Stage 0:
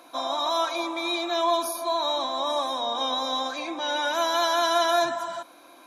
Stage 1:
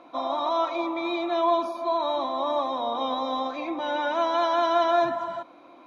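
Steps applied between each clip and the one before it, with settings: LPF 2400 Hz 12 dB/oct; low shelf 370 Hz +6 dB; notch 1600 Hz, Q 6.6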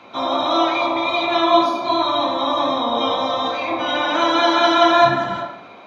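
spectral limiter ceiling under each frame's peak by 14 dB; reverb RT60 0.70 s, pre-delay 3 ms, DRR -2.5 dB; gain -1 dB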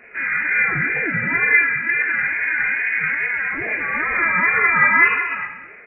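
wow and flutter 110 cents; echo 0.191 s -13 dB; inverted band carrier 2700 Hz; gain -1 dB

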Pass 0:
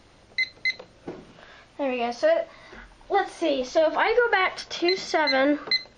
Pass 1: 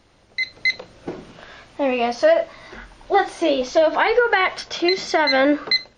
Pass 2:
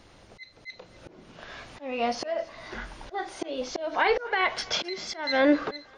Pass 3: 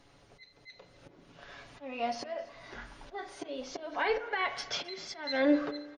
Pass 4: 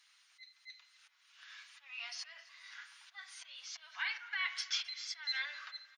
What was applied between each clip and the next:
AGC gain up to 9 dB; gain -2.5 dB
auto swell 0.668 s; thinning echo 0.263 s, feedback 40%, high-pass 550 Hz, level -21 dB; gain +2.5 dB
comb 7.1 ms, depth 47%; on a send at -13 dB: reverb RT60 1.2 s, pre-delay 34 ms; on the sum: gain -8 dB
Bessel high-pass 2100 Hz, order 6; gain +1.5 dB

